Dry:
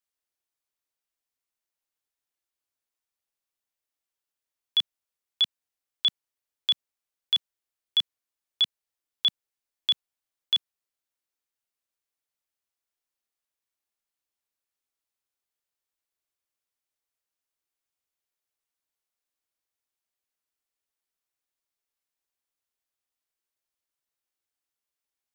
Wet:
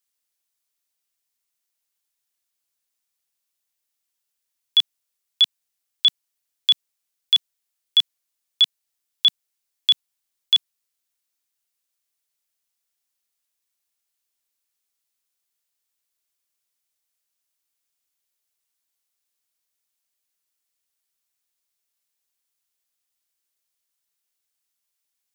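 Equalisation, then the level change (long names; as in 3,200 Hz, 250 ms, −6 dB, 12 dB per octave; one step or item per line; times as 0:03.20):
high-shelf EQ 2,400 Hz +10.5 dB
0.0 dB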